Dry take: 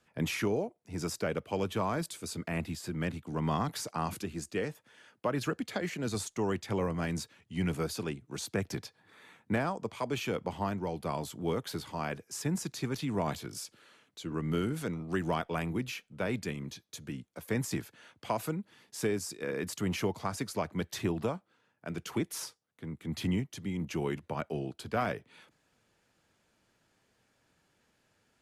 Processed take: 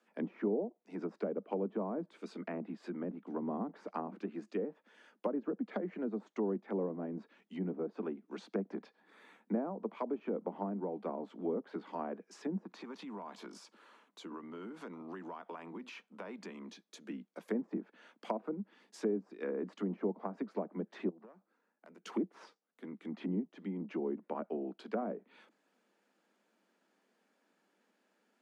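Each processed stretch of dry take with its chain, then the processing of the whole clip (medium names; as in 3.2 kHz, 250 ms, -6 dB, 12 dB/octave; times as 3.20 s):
12.65–16.69 s: peaking EQ 1 kHz +9.5 dB 0.68 oct + compression 12:1, threshold -38 dBFS
21.09–22.05 s: peaking EQ 3.2 kHz -11.5 dB 0.49 oct + compression 20:1, threshold -45 dBFS + valve stage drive 43 dB, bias 0.7
whole clip: low-pass that closes with the level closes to 590 Hz, closed at -29.5 dBFS; steep high-pass 190 Hz 72 dB/octave; treble shelf 2.5 kHz -9 dB; trim -1 dB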